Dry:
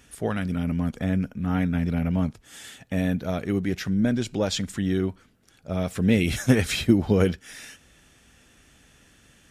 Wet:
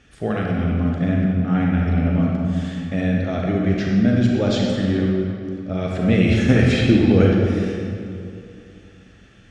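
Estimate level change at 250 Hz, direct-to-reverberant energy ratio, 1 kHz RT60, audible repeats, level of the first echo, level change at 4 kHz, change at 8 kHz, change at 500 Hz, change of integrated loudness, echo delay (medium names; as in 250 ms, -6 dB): +6.5 dB, -2.0 dB, 2.3 s, no echo, no echo, +2.5 dB, no reading, +6.0 dB, +5.5 dB, no echo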